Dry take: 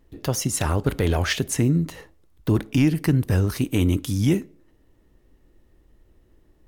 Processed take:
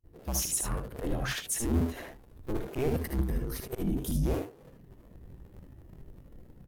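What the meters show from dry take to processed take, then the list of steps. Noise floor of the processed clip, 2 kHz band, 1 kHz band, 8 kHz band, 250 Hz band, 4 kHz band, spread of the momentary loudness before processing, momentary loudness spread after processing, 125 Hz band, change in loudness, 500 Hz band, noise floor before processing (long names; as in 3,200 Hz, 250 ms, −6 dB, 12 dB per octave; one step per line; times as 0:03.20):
−55 dBFS, −10.0 dB, −8.0 dB, −3.5 dB, −11.0 dB, −9.5 dB, 5 LU, 16 LU, −12.5 dB, −9.5 dB, −7.5 dB, −60 dBFS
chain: sub-harmonics by changed cycles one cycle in 2, inverted
in parallel at −3 dB: brickwall limiter −20 dBFS, peak gain reduction 10 dB
on the sum: volume swells 253 ms
downward compressor 16 to 1, threshold −33 dBFS, peak gain reduction 20.5 dB
low-shelf EQ 130 Hz −3.5 dB
gain into a clipping stage and back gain 34 dB
parametric band 14,000 Hz +9 dB 0.95 octaves
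noise gate with hold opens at −46 dBFS
on a send: ambience of single reflections 61 ms −8.5 dB, 76 ms −4.5 dB
on the sum: regular buffer underruns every 0.23 s, samples 256, repeat, from 0:00.88
every bin expanded away from the loudest bin 1.5 to 1
level +6 dB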